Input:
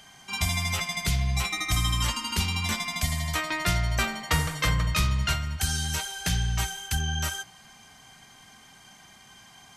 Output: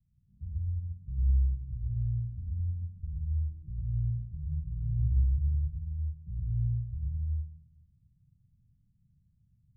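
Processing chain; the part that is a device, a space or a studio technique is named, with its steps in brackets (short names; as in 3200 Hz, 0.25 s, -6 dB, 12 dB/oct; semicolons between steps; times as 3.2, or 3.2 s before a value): 2.64–3.29 comb 1.8 ms; club heard from the street (limiter -19 dBFS, peak gain reduction 8 dB; LPF 130 Hz 24 dB/oct; reverb RT60 0.70 s, pre-delay 95 ms, DRR -2.5 dB); gain -6.5 dB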